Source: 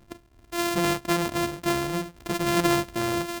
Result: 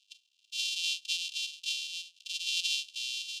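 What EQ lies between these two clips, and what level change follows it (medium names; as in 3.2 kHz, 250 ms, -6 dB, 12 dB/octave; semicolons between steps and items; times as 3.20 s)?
steep high-pass 2.7 kHz 96 dB/octave; low-pass 4.8 kHz 12 dB/octave; +5.0 dB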